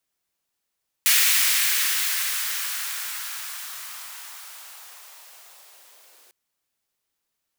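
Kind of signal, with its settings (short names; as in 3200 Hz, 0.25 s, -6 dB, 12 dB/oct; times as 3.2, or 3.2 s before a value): swept filtered noise white, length 5.25 s highpass, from 2000 Hz, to 440 Hz, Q 1.6, linear, gain ramp -37 dB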